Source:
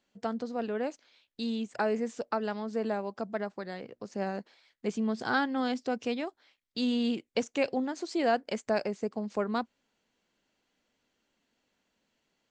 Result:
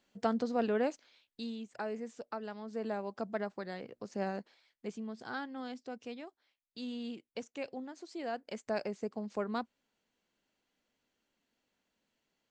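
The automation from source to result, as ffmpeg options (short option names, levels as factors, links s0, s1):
-af "volume=6.31,afade=t=out:st=0.73:d=0.82:silence=0.266073,afade=t=in:st=2.56:d=0.68:silence=0.446684,afade=t=out:st=4.27:d=0.79:silence=0.334965,afade=t=in:st=8.3:d=0.56:silence=0.446684"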